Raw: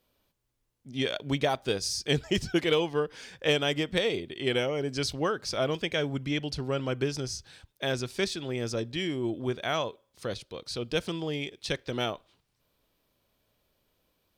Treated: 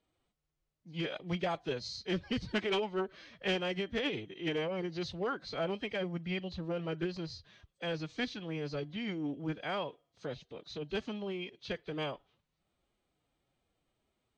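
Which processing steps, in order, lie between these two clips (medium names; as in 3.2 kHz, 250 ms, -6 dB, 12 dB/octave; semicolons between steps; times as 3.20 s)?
knee-point frequency compression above 3 kHz 1.5:1; overload inside the chain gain 19.5 dB; distance through air 84 m; formant-preserving pitch shift +4 st; trim -5.5 dB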